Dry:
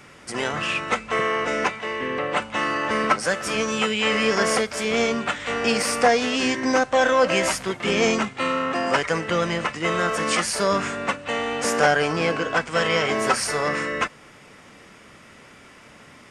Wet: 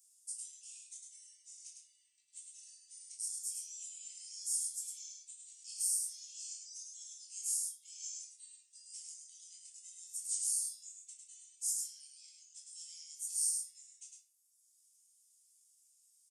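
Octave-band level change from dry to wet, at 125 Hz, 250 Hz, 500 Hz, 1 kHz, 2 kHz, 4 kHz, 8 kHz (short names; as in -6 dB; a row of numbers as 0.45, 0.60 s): under -40 dB, under -40 dB, under -40 dB, under -40 dB, under -40 dB, -23.5 dB, -4.5 dB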